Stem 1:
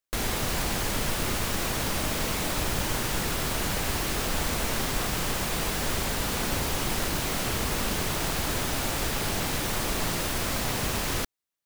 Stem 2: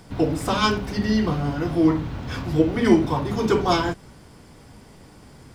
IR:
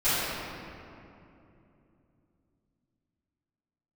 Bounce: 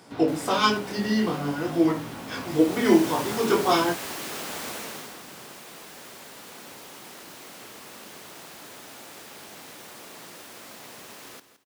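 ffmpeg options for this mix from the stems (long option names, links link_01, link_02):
-filter_complex "[0:a]adelay=150,volume=-4.5dB,afade=type=in:start_time=2.39:duration=0.65:silence=0.251189,afade=type=out:start_time=4.7:duration=0.46:silence=0.334965,asplit=2[link_01][link_02];[link_02]volume=-13dB[link_03];[1:a]flanger=delay=17.5:depth=6.9:speed=0.5,volume=2.5dB[link_04];[link_03]aecho=0:1:167|334|501|668:1|0.27|0.0729|0.0197[link_05];[link_01][link_04][link_05]amix=inputs=3:normalize=0,highpass=240"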